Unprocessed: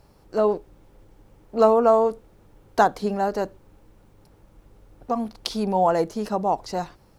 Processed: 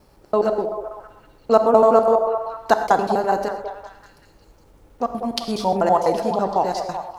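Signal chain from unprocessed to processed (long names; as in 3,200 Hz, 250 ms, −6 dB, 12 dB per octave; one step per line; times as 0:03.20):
slices reordered back to front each 83 ms, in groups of 2
low-shelf EQ 200 Hz −5 dB
echo through a band-pass that steps 192 ms, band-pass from 540 Hz, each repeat 0.7 octaves, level −6 dB
reverb whose tail is shaped and stops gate 150 ms flat, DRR 8 dB
level +3 dB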